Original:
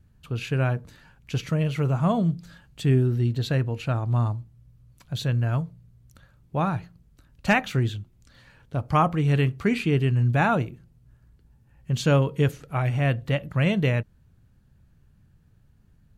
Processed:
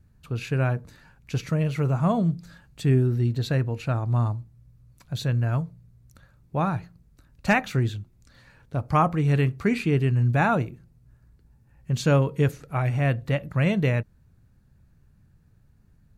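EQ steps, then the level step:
parametric band 3,100 Hz −6.5 dB 0.3 octaves
0.0 dB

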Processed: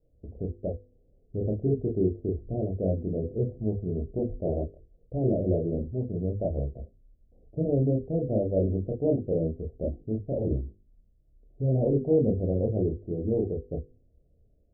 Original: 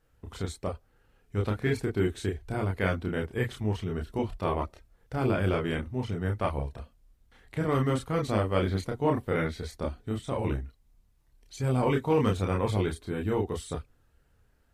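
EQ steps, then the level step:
Butterworth low-pass 660 Hz 72 dB per octave
mains-hum notches 50/100/150/200/250/300/350/400/450/500 Hz
mains-hum notches 50/100/150/200/250 Hz
+3.0 dB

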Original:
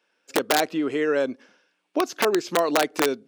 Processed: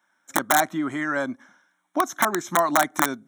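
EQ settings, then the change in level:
Butterworth band-reject 4,700 Hz, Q 3
parametric band 2,400 Hz +7 dB 0.55 octaves
phaser with its sweep stopped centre 1,100 Hz, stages 4
+5.5 dB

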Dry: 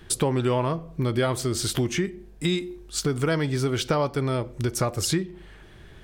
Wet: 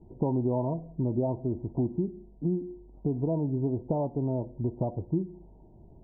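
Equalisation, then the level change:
Chebyshev low-pass with heavy ripple 970 Hz, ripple 6 dB
high-frequency loss of the air 460 metres
0.0 dB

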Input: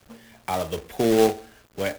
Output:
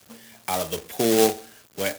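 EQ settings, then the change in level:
high-pass filter 100 Hz 12 dB per octave
high-shelf EQ 3,700 Hz +11 dB
−1.0 dB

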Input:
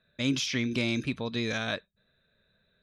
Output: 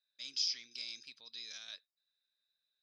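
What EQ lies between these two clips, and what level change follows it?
resonant band-pass 5,000 Hz, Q 11
+7.0 dB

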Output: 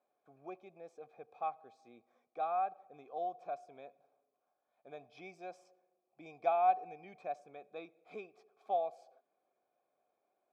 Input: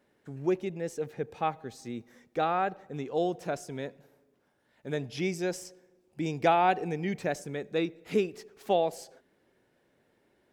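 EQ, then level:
dynamic equaliser 430 Hz, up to −3 dB, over −35 dBFS, Q 0.83
formant filter a
Butterworth band-reject 2,800 Hz, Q 5
0.0 dB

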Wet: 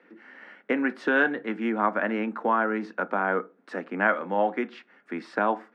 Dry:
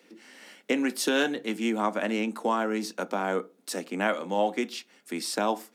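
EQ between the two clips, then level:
low-pass with resonance 1,600 Hz, resonance Q 2.4
0.0 dB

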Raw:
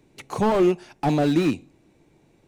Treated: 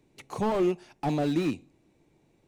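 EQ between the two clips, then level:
parametric band 1,500 Hz −2.5 dB 0.33 octaves
−6.5 dB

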